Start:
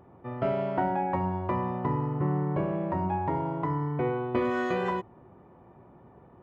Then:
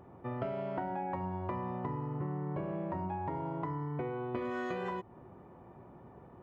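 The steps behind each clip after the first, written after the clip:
downward compressor 6 to 1, threshold −34 dBFS, peak gain reduction 11.5 dB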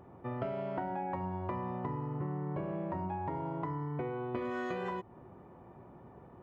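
no processing that can be heard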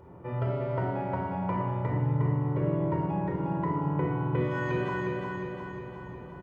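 repeating echo 358 ms, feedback 57%, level −4 dB
rectangular room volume 3,700 cubic metres, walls furnished, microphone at 4.7 metres

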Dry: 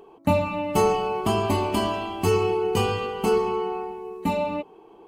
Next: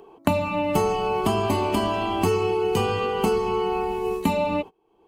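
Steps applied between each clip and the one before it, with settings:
noise gate −36 dBFS, range −29 dB
multiband upward and downward compressor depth 100%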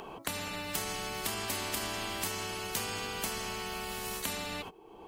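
brickwall limiter −15 dBFS, peak gain reduction 9.5 dB
every bin compressed towards the loudest bin 4 to 1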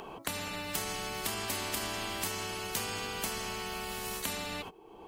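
no processing that can be heard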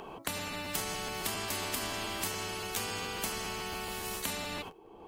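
regular buffer underruns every 0.14 s, samples 512, repeat, from 0:00.36
one half of a high-frequency compander decoder only

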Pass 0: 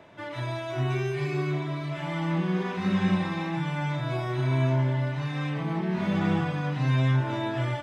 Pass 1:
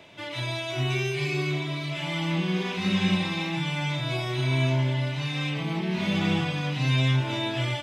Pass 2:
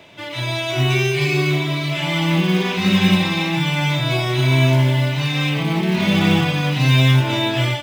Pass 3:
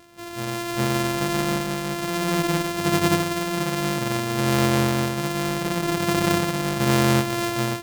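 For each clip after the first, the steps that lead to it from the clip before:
high shelf with overshoot 2,000 Hz +8.5 dB, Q 1.5; notch filter 1,800 Hz, Q 29
in parallel at −5 dB: floating-point word with a short mantissa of 2 bits; on the sum: automatic gain control gain up to 4.5 dB; level +1 dB
samples sorted by size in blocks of 128 samples; level −5.5 dB

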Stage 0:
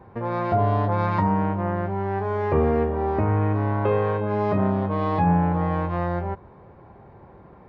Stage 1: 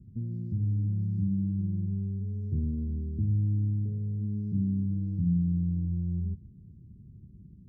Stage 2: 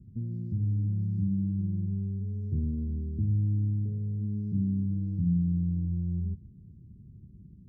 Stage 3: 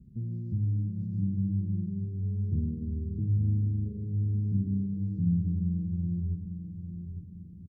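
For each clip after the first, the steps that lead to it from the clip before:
high shelf with overshoot 1,800 Hz −13.5 dB, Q 1.5; downward compressor 2 to 1, threshold −25 dBFS, peak gain reduction 6 dB; inverse Chebyshev band-stop filter 690–2,100 Hz, stop band 70 dB; level +1 dB
no processing that can be heard
flanger 1 Hz, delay 4.1 ms, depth 5.2 ms, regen −57%; repeating echo 852 ms, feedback 40%, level −9 dB; level +3.5 dB

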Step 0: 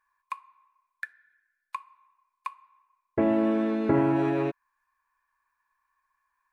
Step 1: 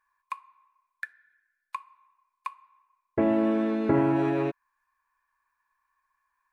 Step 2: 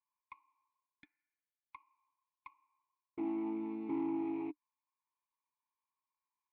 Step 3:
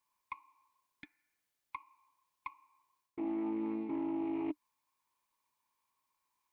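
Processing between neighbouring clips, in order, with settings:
no processing that can be heard
tube saturation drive 25 dB, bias 0.65; formant filter u
reversed playback; downward compressor, threshold −44 dBFS, peak gain reduction 11.5 dB; reversed playback; highs frequency-modulated by the lows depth 0.11 ms; level +10 dB

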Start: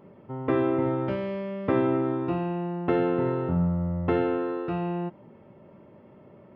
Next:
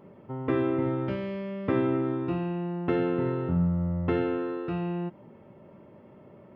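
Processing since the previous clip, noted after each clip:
dynamic equaliser 750 Hz, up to −6 dB, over −39 dBFS, Q 0.91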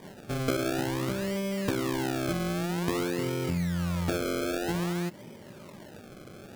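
downward compressor, threshold −31 dBFS, peak gain reduction 10 dB
sample-and-hold swept by an LFO 32×, swing 100% 0.52 Hz
level +4.5 dB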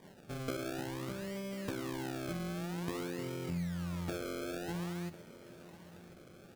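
tuned comb filter 170 Hz, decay 0.62 s, harmonics odd, mix 60%
repeating echo 1,046 ms, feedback 38%, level −17 dB
level −2.5 dB

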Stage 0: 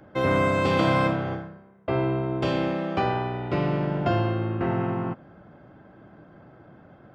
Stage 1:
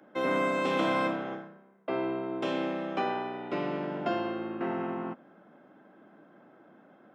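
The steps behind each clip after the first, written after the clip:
Chebyshev high-pass filter 220 Hz, order 3
notch filter 4,600 Hz, Q 15
level −4.5 dB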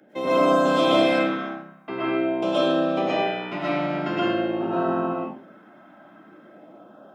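auto-filter notch sine 0.47 Hz 420–2,200 Hz
convolution reverb RT60 0.45 s, pre-delay 80 ms, DRR −7.5 dB
level +2.5 dB

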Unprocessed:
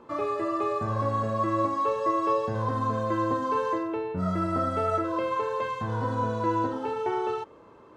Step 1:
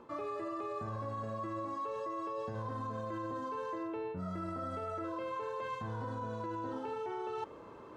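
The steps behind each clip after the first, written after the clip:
brickwall limiter −23 dBFS, peak gain reduction 8.5 dB
reversed playback
downward compressor 6 to 1, threshold −38 dBFS, peak gain reduction 11 dB
reversed playback
level +1 dB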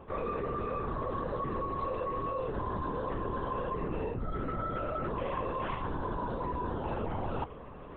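linear-prediction vocoder at 8 kHz whisper
level +5 dB

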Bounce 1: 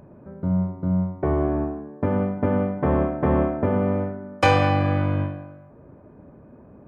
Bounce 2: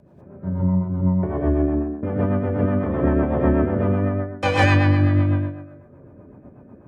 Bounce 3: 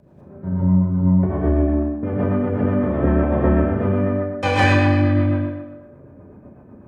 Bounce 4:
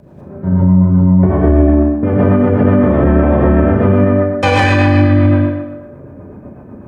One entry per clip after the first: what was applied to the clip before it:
reverb whose tail is shaped and stops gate 220 ms rising, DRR −7 dB; rotating-speaker cabinet horn 8 Hz; level −4 dB
four-comb reverb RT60 0.73 s, combs from 29 ms, DRR 3.5 dB
boost into a limiter +11 dB; level −1 dB

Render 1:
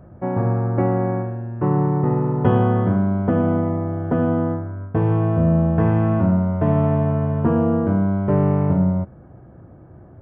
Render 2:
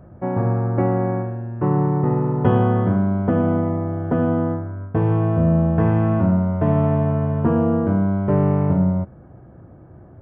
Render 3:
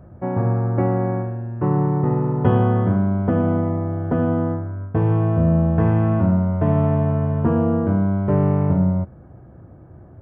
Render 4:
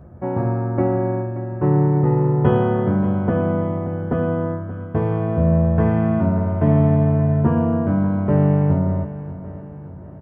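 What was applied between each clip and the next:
no processing that can be heard
parametric band 74 Hz +3.5 dB 1.3 octaves; level −1 dB
double-tracking delay 14 ms −6 dB; repeating echo 579 ms, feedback 48%, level −14.5 dB

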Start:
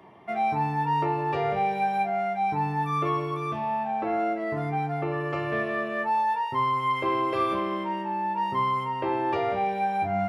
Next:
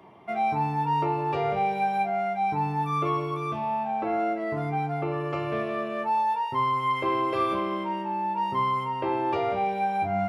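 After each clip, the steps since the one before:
notch filter 1,800 Hz, Q 10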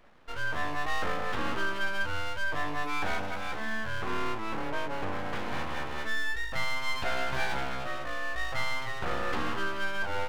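automatic gain control gain up to 4 dB
full-wave rectification
level −5.5 dB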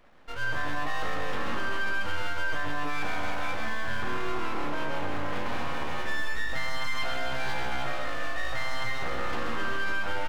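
reverse bouncing-ball delay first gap 130 ms, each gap 1.3×, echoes 5
on a send at −12 dB: convolution reverb RT60 1.0 s, pre-delay 3 ms
on the sum: brickwall limiter −18.5 dBFS, peak gain reduction 5 dB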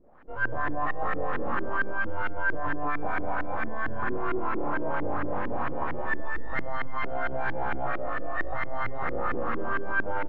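auto-filter low-pass saw up 4.4 Hz 300–1,900 Hz

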